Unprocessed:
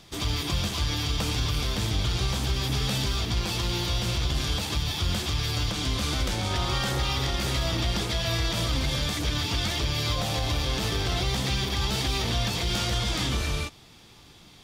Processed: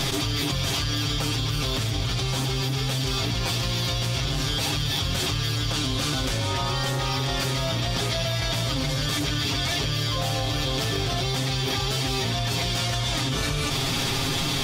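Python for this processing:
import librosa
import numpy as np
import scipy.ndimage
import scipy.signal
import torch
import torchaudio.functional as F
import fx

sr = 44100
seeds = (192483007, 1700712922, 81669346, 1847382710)

y = x + 0.91 * np.pad(x, (int(7.4 * sr / 1000.0), 0))[:len(x)]
y = fx.env_flatten(y, sr, amount_pct=100)
y = y * 10.0 ** (-4.0 / 20.0)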